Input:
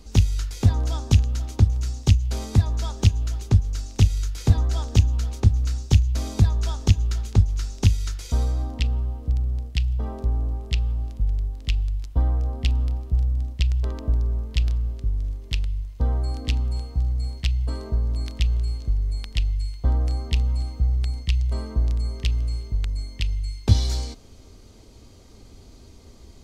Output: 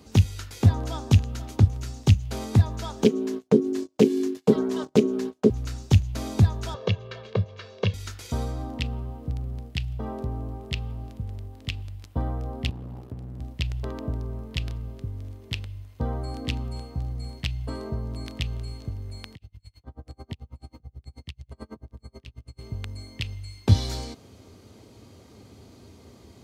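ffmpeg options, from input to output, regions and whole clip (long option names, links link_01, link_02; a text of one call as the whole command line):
ffmpeg -i in.wav -filter_complex "[0:a]asettb=1/sr,asplit=3[link_01][link_02][link_03];[link_01]atrim=end=3.044[link_04];[link_02]atrim=start=3.04:end=5.5,asetpts=PTS-STARTPTS,afade=type=in:duration=0.004:curve=qsin,afade=type=out:start_time=2.456:duration=0.004:curve=qsin,aecho=1:1:6.6:0.62,atrim=end_sample=108486,agate=range=-32dB:threshold=-31dB:ratio=16:release=100:detection=peak,aeval=exprs='val(0)*sin(2*PI*320*n/s)':channel_layout=same[link_05];[link_03]atrim=start=5.496[link_06];[link_04][link_05]acrossfade=duration=0.004:curve1=hsin:curve2=qsin[link_07];[link_07][link_06]acrossfade=duration=0.004:curve1=qsin:curve2=hsin,asettb=1/sr,asplit=3[link_08][link_09][link_10];[link_08]atrim=end=6.744[link_11];[link_09]atrim=start=6.74:end=7.94,asetpts=PTS-STARTPTS,afade=type=in:duration=0.004:curve=qsin,afade=type=out:start_time=1.196:duration=0.004:curve=qsin,highpass=frequency=130:width=0.5412,highpass=frequency=130:width=1.3066,equalizer=frequency=140:width_type=q:width=4:gain=-9,equalizer=frequency=270:width_type=q:width=4:gain=-10,equalizer=frequency=490:width_type=q:width=4:gain=10,lowpass=frequency=4000:width=0.5412,lowpass=frequency=4000:width=1.3066,aecho=1:1:1.8:0.71,atrim=end_sample=52920[link_12];[link_10]atrim=start=7.936[link_13];[link_11][link_12]acrossfade=duration=0.004:curve1=hsin:curve2=qsin[link_14];[link_14][link_13]acrossfade=duration=0.004:curve1=qsin:curve2=hsin,asettb=1/sr,asplit=3[link_15][link_16][link_17];[link_15]atrim=end=12.694[link_18];[link_16]atrim=start=12.69:end=13.4,asetpts=PTS-STARTPTS,afade=type=in:duration=0.004:curve=qsin,afade=type=out:start_time=0.706:duration=0.004:curve=qsin,acompressor=threshold=-23dB:ratio=6:attack=3.2:release=140:knee=1:detection=peak,aeval=exprs='max(val(0),0)':channel_layout=same[link_19];[link_17]atrim=start=13.396[link_20];[link_18][link_19]acrossfade=duration=0.004:curve1=hsin:curve2=qsin[link_21];[link_21][link_20]acrossfade=duration=0.004:curve1=qsin:curve2=hsin,asettb=1/sr,asplit=3[link_22][link_23][link_24];[link_22]atrim=end=19.344[link_25];[link_23]atrim=start=19.34:end=22.59,asetpts=PTS-STARTPTS,afade=type=in:duration=0.004:curve=qsin,afade=type=out:start_time=3.246:duration=0.004:curve=qsin,acompressor=threshold=-26dB:ratio=10:attack=3.2:release=140:knee=1:detection=peak,aeval=exprs='val(0)*pow(10,-36*(0.5-0.5*cos(2*PI*9.2*n/s))/20)':channel_layout=same[link_26];[link_24]atrim=start=22.586[link_27];[link_25][link_26]acrossfade=duration=0.004:curve1=hsin:curve2=qsin[link_28];[link_28][link_27]acrossfade=duration=0.004:curve1=qsin:curve2=hsin,highpass=frequency=86:width=0.5412,highpass=frequency=86:width=1.3066,equalizer=frequency=6100:width_type=o:width=1.6:gain=-6,volume=2dB" out.wav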